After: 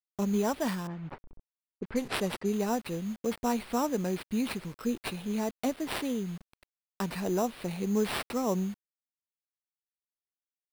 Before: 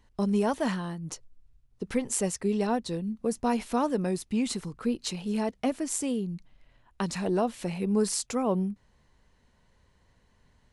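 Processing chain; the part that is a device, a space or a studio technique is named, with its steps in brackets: early 8-bit sampler (sample-rate reducer 6600 Hz, jitter 0%; bit-crush 8-bit); 0.87–2.53 low-pass opened by the level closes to 470 Hz, open at -25.5 dBFS; gain -2.5 dB

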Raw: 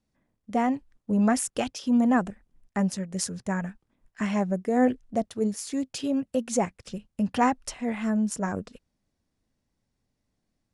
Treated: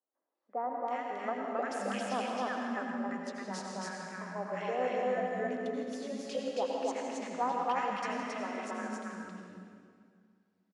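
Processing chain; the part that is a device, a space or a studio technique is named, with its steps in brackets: station announcement (BPF 380–4000 Hz; bell 1300 Hz +5 dB 0.28 oct; loudspeakers at several distances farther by 57 m -12 dB, 93 m -1 dB; reverb RT60 2.1 s, pre-delay 76 ms, DRR 1 dB); three bands offset in time mids, highs, lows 0.35/0.7 s, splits 290/1300 Hz; gain -7 dB

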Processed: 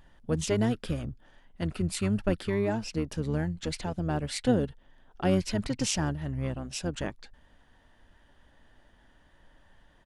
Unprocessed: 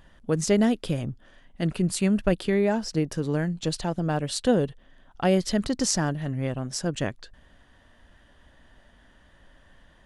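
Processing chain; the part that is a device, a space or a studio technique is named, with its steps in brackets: octave pedal (harmoniser -12 st -5 dB); gain -5.5 dB

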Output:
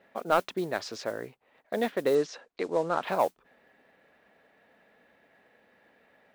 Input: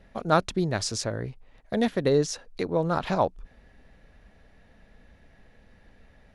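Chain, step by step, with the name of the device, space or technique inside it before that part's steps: carbon microphone (BPF 350–3100 Hz; soft clip -11.5 dBFS, distortion -18 dB; modulation noise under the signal 24 dB); 2.15–3.03 LPF 8200 Hz 24 dB/oct

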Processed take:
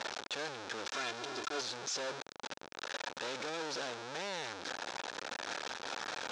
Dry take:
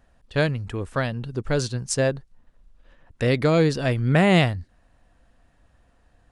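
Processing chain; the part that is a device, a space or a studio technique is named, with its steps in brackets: steep low-pass 7400 Hz 96 dB/oct; home computer beeper (infinite clipping; speaker cabinet 640–5700 Hz, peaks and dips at 680 Hz -7 dB, 1100 Hz -7 dB, 2000 Hz -9 dB, 2900 Hz -7 dB, 4600 Hz -4 dB); 0.93–1.61 comb 2.9 ms, depth 83%; gain -5.5 dB

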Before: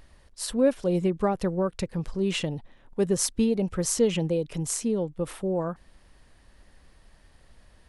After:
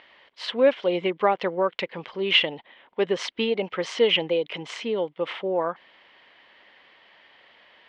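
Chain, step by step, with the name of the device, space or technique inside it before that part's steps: phone earpiece (speaker cabinet 460–3800 Hz, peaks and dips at 960 Hz +3 dB, 2100 Hz +9 dB, 3100 Hz +10 dB); gain +6 dB

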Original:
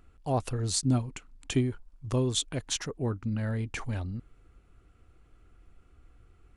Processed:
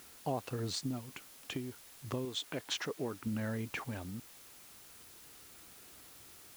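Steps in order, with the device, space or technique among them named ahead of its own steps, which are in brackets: medium wave at night (BPF 160–4200 Hz; compressor, threshold -34 dBFS, peak gain reduction 11.5 dB; tremolo 0.34 Hz, depth 48%; whine 10000 Hz -68 dBFS; white noise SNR 15 dB); 2.25–3.27 tone controls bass -7 dB, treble -1 dB; gain +2.5 dB

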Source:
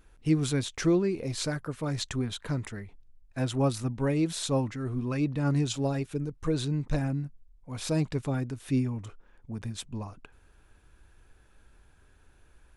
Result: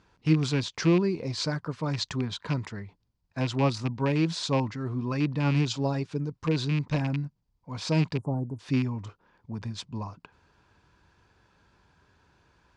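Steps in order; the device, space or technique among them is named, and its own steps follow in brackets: 8.16–8.59 Chebyshev band-stop 830–9600 Hz, order 3; car door speaker with a rattle (rattling part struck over -28 dBFS, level -26 dBFS; speaker cabinet 90–6600 Hz, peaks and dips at 100 Hz +4 dB, 170 Hz +6 dB, 980 Hz +8 dB, 4700 Hz +7 dB)

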